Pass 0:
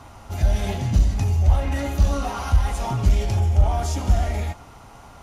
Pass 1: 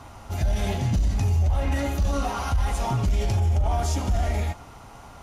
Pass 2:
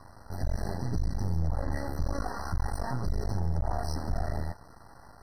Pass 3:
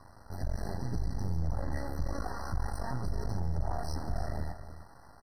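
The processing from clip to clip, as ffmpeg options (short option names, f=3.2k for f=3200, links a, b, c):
-af "alimiter=limit=-15.5dB:level=0:latency=1:release=28"
-af "aeval=exprs='max(val(0),0)':c=same,afftfilt=real='re*eq(mod(floor(b*sr/1024/2000),2),0)':imag='im*eq(mod(floor(b*sr/1024/2000),2),0)':win_size=1024:overlap=0.75,volume=-3.5dB"
-af "aecho=1:1:313:0.266,volume=-3.5dB"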